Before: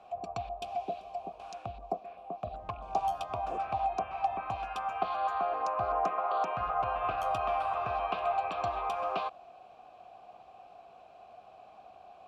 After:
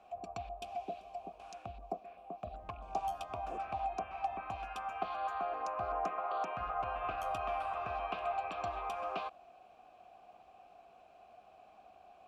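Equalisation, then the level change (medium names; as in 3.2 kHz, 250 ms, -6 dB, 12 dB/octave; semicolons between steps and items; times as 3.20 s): ten-band graphic EQ 125 Hz -7 dB, 500 Hz -4 dB, 1 kHz -5 dB, 4 kHz -5 dB; -1.0 dB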